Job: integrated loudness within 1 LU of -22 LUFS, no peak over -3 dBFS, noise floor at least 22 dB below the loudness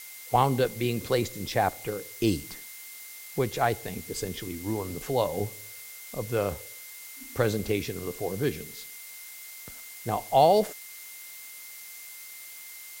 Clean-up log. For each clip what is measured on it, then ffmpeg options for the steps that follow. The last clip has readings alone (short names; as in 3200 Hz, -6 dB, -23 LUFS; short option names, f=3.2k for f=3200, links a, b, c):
steady tone 2100 Hz; tone level -49 dBFS; noise floor -44 dBFS; noise floor target -51 dBFS; loudness -28.5 LUFS; peak -8.5 dBFS; loudness target -22.0 LUFS
-> -af "bandreject=f=2.1k:w=30"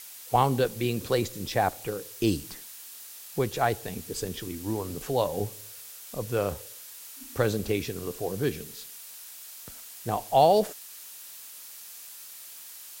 steady tone none; noise floor -45 dBFS; noise floor target -51 dBFS
-> -af "afftdn=nr=6:nf=-45"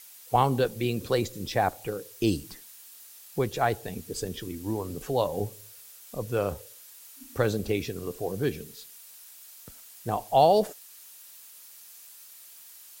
noise floor -50 dBFS; noise floor target -51 dBFS
-> -af "afftdn=nr=6:nf=-50"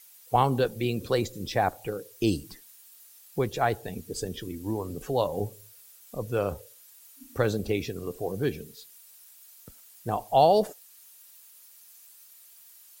noise floor -54 dBFS; loudness -28.5 LUFS; peak -8.5 dBFS; loudness target -22.0 LUFS
-> -af "volume=6.5dB,alimiter=limit=-3dB:level=0:latency=1"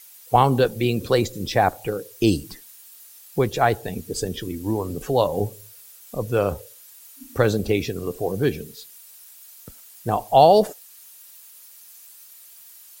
loudness -22.0 LUFS; peak -3.0 dBFS; noise floor -47 dBFS